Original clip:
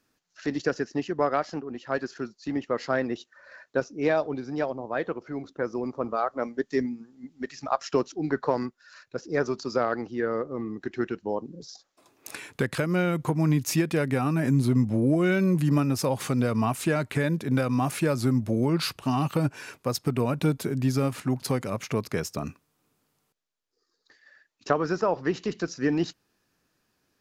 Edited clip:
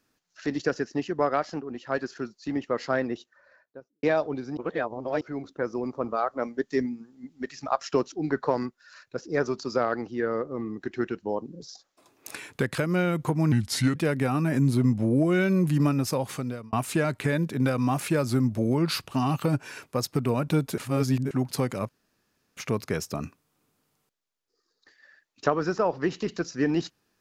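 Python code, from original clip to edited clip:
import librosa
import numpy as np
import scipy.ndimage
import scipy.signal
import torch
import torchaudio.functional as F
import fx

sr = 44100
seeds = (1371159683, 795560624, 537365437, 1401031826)

y = fx.studio_fade_out(x, sr, start_s=2.92, length_s=1.11)
y = fx.edit(y, sr, fx.reverse_span(start_s=4.57, length_s=0.64),
    fx.speed_span(start_s=13.52, length_s=0.35, speed=0.8),
    fx.fade_out_span(start_s=15.75, length_s=0.89, curve='qsin'),
    fx.reverse_span(start_s=20.69, length_s=0.53),
    fx.insert_room_tone(at_s=21.8, length_s=0.68), tone=tone)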